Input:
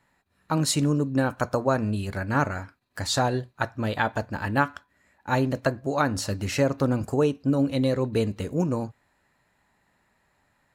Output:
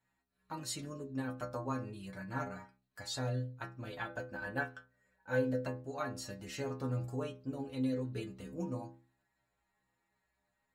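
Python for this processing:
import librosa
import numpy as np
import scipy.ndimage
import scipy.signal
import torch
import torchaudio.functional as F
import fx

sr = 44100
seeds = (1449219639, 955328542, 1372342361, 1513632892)

y = fx.stiff_resonator(x, sr, f0_hz=61.0, decay_s=0.57, stiffness=0.008)
y = fx.small_body(y, sr, hz=(520.0, 1500.0), ring_ms=50, db=13, at=(4.09, 5.65))
y = y * 10.0 ** (-4.0 / 20.0)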